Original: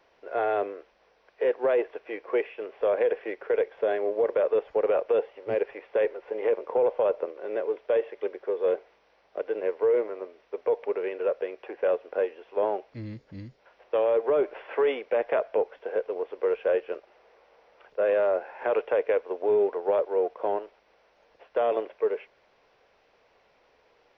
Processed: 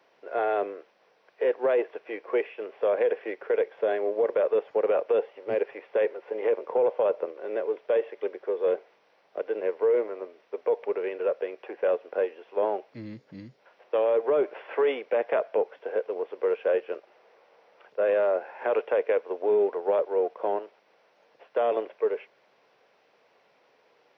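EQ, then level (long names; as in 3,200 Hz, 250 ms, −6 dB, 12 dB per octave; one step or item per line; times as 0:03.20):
high-pass filter 130 Hz 24 dB per octave
0.0 dB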